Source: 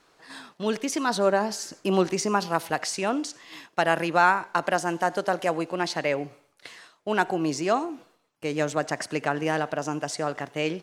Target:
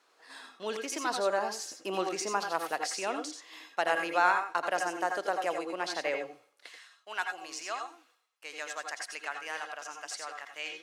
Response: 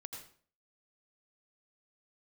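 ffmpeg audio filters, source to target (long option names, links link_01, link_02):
-filter_complex "[0:a]asetnsamples=nb_out_samples=441:pad=0,asendcmd='6.69 highpass f 1200',highpass=420[link_01];[1:a]atrim=start_sample=2205,atrim=end_sample=4410[link_02];[link_01][link_02]afir=irnorm=-1:irlink=0"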